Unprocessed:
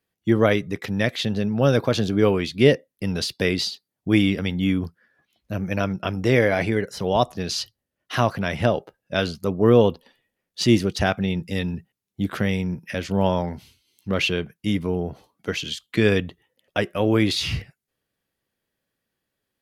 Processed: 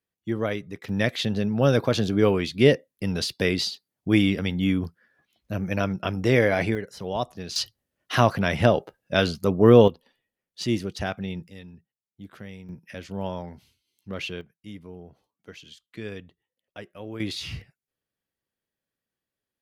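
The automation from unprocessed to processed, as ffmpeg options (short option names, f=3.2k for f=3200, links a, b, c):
-af "asetnsamples=n=441:p=0,asendcmd='0.89 volume volume -1.5dB;6.75 volume volume -8dB;7.56 volume volume 1.5dB;9.88 volume volume -8dB;11.48 volume volume -18dB;12.69 volume volume -10.5dB;14.41 volume volume -17.5dB;17.2 volume volume -9dB',volume=-9dB"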